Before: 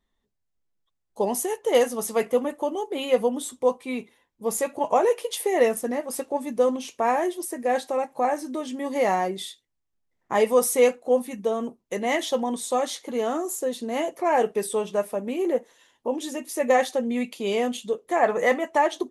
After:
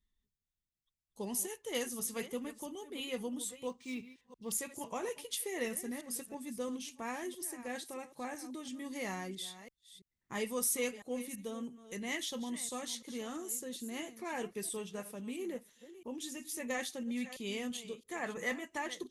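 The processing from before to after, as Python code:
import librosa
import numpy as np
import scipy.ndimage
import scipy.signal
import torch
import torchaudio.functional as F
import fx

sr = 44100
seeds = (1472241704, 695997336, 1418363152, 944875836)

y = fx.reverse_delay(x, sr, ms=334, wet_db=-14.0)
y = fx.tone_stack(y, sr, knobs='6-0-2')
y = fx.resample_linear(y, sr, factor=3, at=(3.68, 4.52))
y = y * librosa.db_to_amplitude(8.5)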